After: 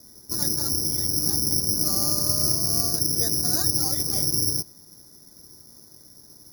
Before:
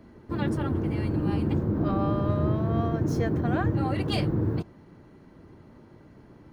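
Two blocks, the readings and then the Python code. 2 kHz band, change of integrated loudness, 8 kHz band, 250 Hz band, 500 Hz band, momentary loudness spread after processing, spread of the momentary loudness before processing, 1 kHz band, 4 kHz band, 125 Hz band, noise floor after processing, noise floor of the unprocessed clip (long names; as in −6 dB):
−8.0 dB, +6.0 dB, can't be measured, −7.0 dB, −7.0 dB, 4 LU, 4 LU, −7.0 dB, +17.5 dB, −7.0 dB, −51 dBFS, −53 dBFS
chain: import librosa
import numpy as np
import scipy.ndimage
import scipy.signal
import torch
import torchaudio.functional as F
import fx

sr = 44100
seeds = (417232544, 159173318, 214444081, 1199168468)

y = scipy.signal.sosfilt(scipy.signal.butter(16, 2200.0, 'lowpass', fs=sr, output='sos'), x)
y = (np.kron(y[::8], np.eye(8)[0]) * 8)[:len(y)]
y = y * librosa.db_to_amplitude(-7.0)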